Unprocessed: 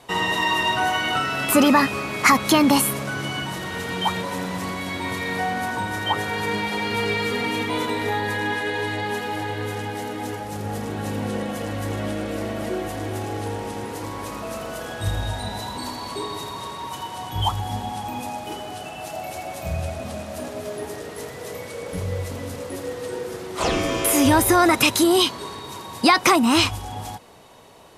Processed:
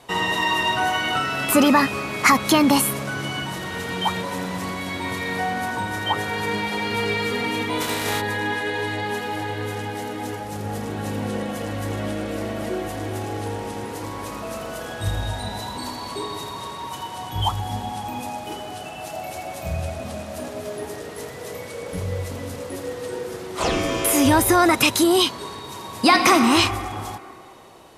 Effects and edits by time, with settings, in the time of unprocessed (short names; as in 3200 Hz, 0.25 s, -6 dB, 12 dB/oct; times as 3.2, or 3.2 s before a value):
7.8–8.2 spectral contrast lowered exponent 0.55
25.72–26.33 reverb throw, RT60 2.6 s, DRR 3.5 dB